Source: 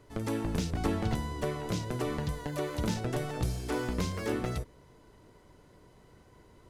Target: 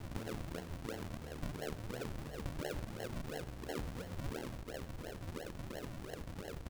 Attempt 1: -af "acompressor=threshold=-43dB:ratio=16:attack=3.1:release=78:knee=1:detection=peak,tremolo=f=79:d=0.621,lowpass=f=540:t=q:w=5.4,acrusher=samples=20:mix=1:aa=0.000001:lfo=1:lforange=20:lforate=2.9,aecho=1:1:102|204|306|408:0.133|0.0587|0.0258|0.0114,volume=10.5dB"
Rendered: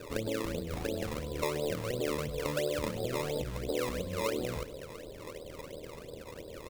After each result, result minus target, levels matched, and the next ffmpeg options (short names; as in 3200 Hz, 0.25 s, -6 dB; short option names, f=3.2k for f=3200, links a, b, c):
decimation with a swept rate: distortion -17 dB; compressor: peak gain reduction -8.5 dB
-af "acompressor=threshold=-43dB:ratio=16:attack=3.1:release=78:knee=1:detection=peak,tremolo=f=79:d=0.621,lowpass=f=540:t=q:w=5.4,acrusher=samples=72:mix=1:aa=0.000001:lfo=1:lforange=72:lforate=2.9,aecho=1:1:102|204|306|408:0.133|0.0587|0.0258|0.0114,volume=10.5dB"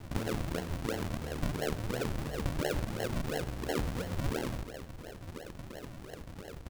compressor: peak gain reduction -8.5 dB
-af "acompressor=threshold=-52dB:ratio=16:attack=3.1:release=78:knee=1:detection=peak,tremolo=f=79:d=0.621,lowpass=f=540:t=q:w=5.4,acrusher=samples=72:mix=1:aa=0.000001:lfo=1:lforange=72:lforate=2.9,aecho=1:1:102|204|306|408:0.133|0.0587|0.0258|0.0114,volume=10.5dB"